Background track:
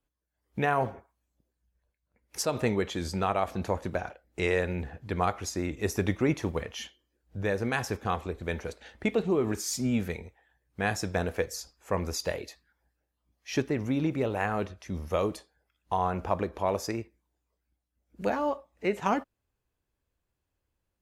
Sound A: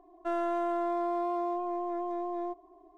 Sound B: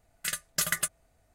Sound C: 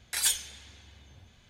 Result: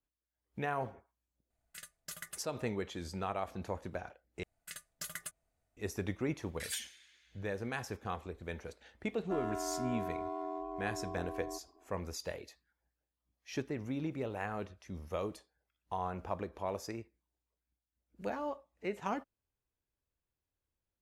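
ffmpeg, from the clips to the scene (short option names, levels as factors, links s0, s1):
-filter_complex "[2:a]asplit=2[s0][s1];[0:a]volume=0.335[s2];[3:a]highpass=f=1800:t=q:w=2.2[s3];[1:a]aeval=exprs='val(0)*sin(2*PI*43*n/s)':c=same[s4];[s2]asplit=2[s5][s6];[s5]atrim=end=4.434[s7];[s1]atrim=end=1.34,asetpts=PTS-STARTPTS,volume=0.178[s8];[s6]atrim=start=5.766[s9];[s0]atrim=end=1.34,asetpts=PTS-STARTPTS,volume=0.133,afade=t=in:d=0.004:c=hsin,afade=t=out:st=1.336:d=0.004:c=hsin,adelay=1500[s10];[s3]atrim=end=1.49,asetpts=PTS-STARTPTS,volume=0.178,afade=t=in:d=0.004:c=hsin,afade=t=out:st=1.486:d=0.004:c=hsin,adelay=6470[s11];[s4]atrim=end=2.97,asetpts=PTS-STARTPTS,volume=0.531,afade=t=in:d=0.004:c=hsin,afade=t=out:st=2.966:d=0.004:c=hsin,adelay=9050[s12];[s7][s8]acrossfade=d=0.004:c1=hsin:c2=hsin[s13];[s13][s9]acrossfade=d=0.004:c1=hsin:c2=hsin[s14];[s14][s10][s11][s12]amix=inputs=4:normalize=0"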